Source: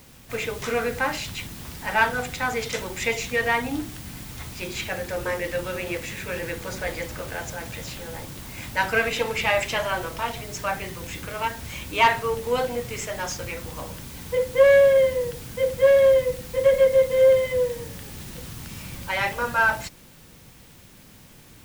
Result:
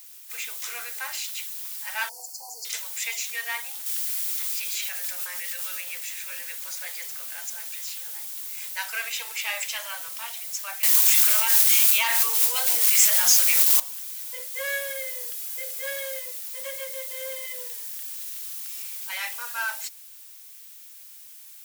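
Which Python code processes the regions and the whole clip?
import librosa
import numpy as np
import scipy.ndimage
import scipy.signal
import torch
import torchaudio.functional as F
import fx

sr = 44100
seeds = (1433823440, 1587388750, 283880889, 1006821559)

y = fx.chain(x, sr, fx.brickwall_bandstop(low_hz=1000.0, high_hz=4200.0),
    fx.high_shelf(hz=8600.0, db=-7.5), at=(2.09, 2.65))
y = fx.chain(y, sr, fx.highpass(hz=840.0, slope=6),
    fx.env_flatten(amount_pct=50), at=(3.86, 5.81))
y = fx.chain(y, sr, fx.peak_eq(hz=85.0, db=5.0, octaves=0.34),
    fx.quant_dither(seeds[0], bits=6, dither='none'),
    fx.env_flatten(amount_pct=70), at=(10.83, 13.8))
y = fx.chain(y, sr, fx.peak_eq(hz=12000.0, db=3.0, octaves=0.21),
    fx.comb(ms=2.4, depth=0.62), at=(14.54, 16.19))
y = scipy.signal.sosfilt(scipy.signal.butter(4, 580.0, 'highpass', fs=sr, output='sos'), y)
y = np.diff(y, prepend=0.0)
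y = F.gain(torch.from_numpy(y), 4.5).numpy()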